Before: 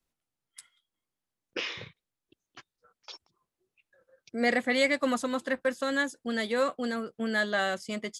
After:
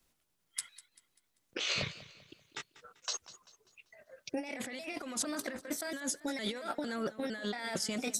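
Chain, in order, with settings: pitch shift switched off and on +3 st, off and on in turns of 228 ms; treble shelf 2.4 kHz +3.5 dB; compressor with a negative ratio -38 dBFS, ratio -1; modulated delay 195 ms, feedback 42%, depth 94 cents, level -17 dB

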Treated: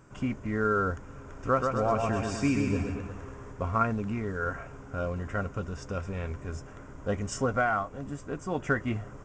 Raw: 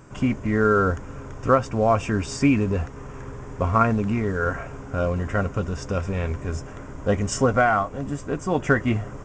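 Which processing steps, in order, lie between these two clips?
peaking EQ 1.4 kHz +3 dB 0.29 oct; 1.15–3.52 s: bouncing-ball echo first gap 130 ms, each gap 0.9×, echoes 5; trim -8.5 dB

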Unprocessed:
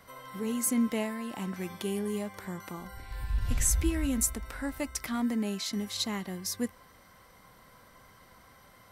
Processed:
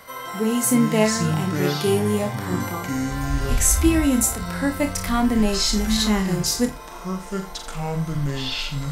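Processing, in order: tone controls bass -6 dB, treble +1 dB; flutter echo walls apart 4.8 m, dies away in 0.2 s; harmonic-percussive split harmonic +9 dB; ever faster or slower copies 130 ms, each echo -7 st, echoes 2, each echo -6 dB; trim +4.5 dB

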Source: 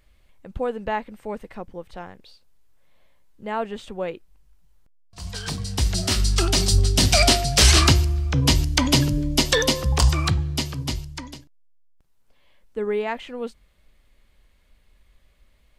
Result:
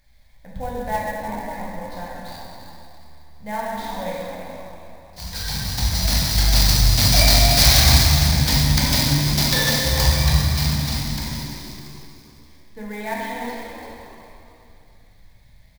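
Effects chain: treble shelf 4 kHz +9 dB; in parallel at +0.5 dB: compression, threshold -29 dBFS, peak gain reduction 20 dB; on the sum: static phaser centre 1.9 kHz, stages 8; on a send: frequency-shifting echo 342 ms, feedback 34%, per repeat +75 Hz, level -10.5 dB; on the sum: plate-style reverb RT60 2.7 s, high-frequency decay 0.9×, DRR -6 dB; sampling jitter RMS 0.022 ms; trim -6.5 dB

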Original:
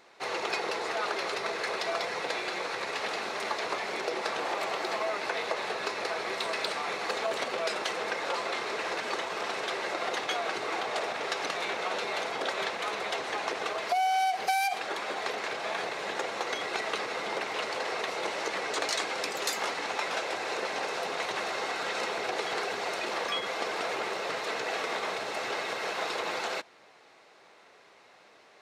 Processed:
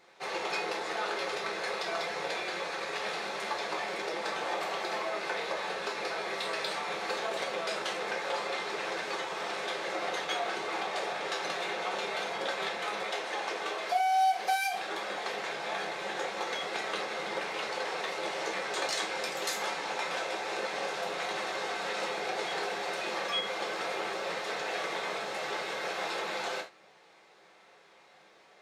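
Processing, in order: 13.03–14.66 s: high-pass 230 Hz 12 dB/octave; gated-style reverb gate 110 ms falling, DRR -0.5 dB; trim -5 dB

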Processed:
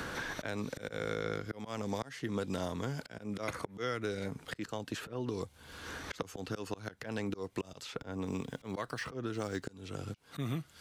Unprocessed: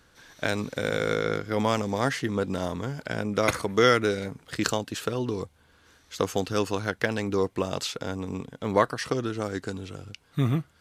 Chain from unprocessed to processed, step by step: 7.99–9.66 s: median filter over 3 samples; slow attack 622 ms; three bands compressed up and down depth 100%; trim -1 dB

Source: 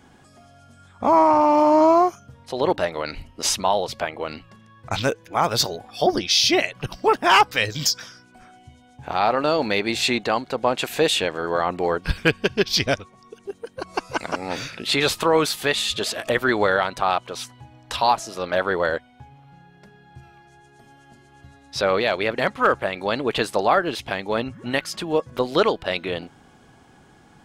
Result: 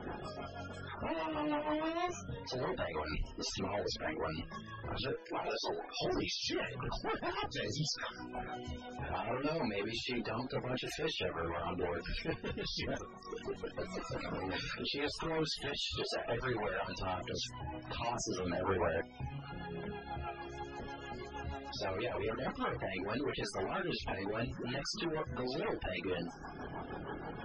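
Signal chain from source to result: spectral levelling over time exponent 0.6; reverb removal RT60 1 s; 5.10–5.98 s: high-pass 290 Hz 24 dB/octave; vibrato 1.7 Hz 8.8 cents; valve stage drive 29 dB, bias 0.2; chorus voices 4, 0.6 Hz, delay 28 ms, depth 4.3 ms; rotary cabinet horn 6.3 Hz; loudest bins only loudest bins 64

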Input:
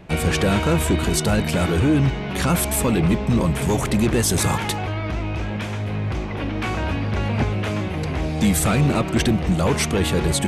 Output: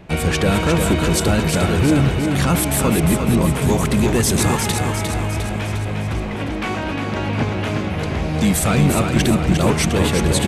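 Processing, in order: 6.34–7.57 s: high-pass 190 Hz -> 89 Hz 12 dB/octave; on a send: feedback delay 354 ms, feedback 54%, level -5.5 dB; on the sum: trim +1.5 dB

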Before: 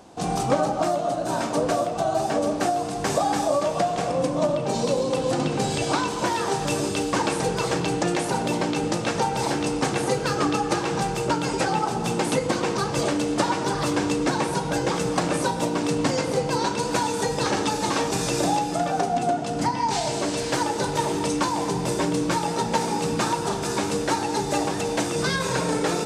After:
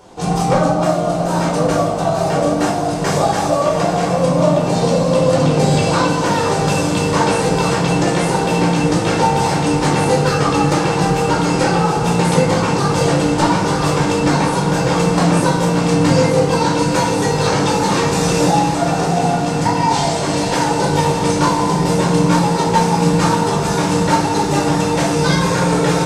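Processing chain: one-sided wavefolder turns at -12 dBFS; echo that smears into a reverb 770 ms, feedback 73%, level -10 dB; simulated room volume 770 m³, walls furnished, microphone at 4.5 m; trim +1 dB

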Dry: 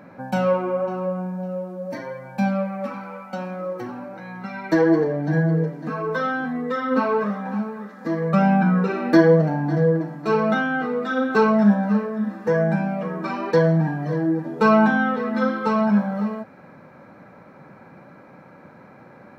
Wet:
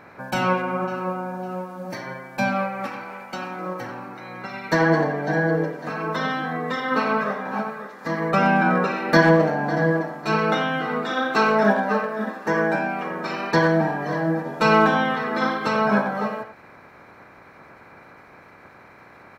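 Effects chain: spectral peaks clipped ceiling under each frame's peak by 17 dB; 11.09–13.10 s: high-pass 200 Hz; speakerphone echo 90 ms, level -8 dB; trim -1.5 dB

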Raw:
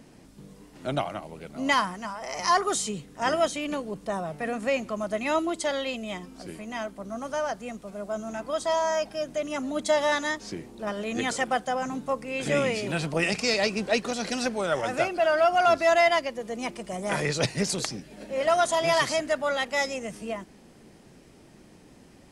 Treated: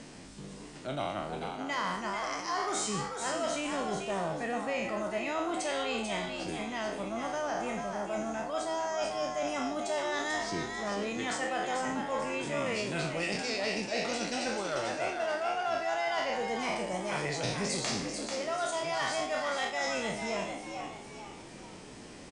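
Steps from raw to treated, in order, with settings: spectral sustain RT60 0.55 s; steep low-pass 9.5 kHz 72 dB/octave; reverse; compression 6:1, threshold -31 dBFS, peak gain reduction 14 dB; reverse; frequency-shifting echo 441 ms, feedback 36%, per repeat +100 Hz, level -5.5 dB; tape noise reduction on one side only encoder only

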